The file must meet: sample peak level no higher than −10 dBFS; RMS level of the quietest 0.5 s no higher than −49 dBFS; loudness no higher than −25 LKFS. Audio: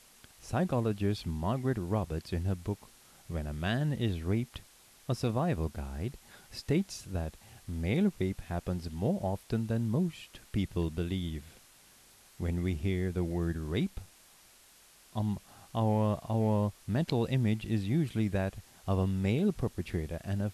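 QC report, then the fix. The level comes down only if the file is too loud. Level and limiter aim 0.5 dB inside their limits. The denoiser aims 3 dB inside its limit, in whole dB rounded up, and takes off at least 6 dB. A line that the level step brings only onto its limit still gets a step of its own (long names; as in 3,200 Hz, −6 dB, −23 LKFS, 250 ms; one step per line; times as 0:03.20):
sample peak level −18.0 dBFS: in spec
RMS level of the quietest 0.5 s −60 dBFS: in spec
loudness −33.0 LKFS: in spec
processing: no processing needed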